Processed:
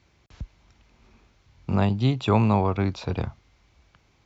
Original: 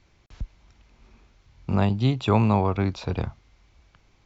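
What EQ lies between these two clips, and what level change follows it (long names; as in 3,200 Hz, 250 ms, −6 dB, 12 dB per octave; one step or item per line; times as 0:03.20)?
high-pass filter 54 Hz
0.0 dB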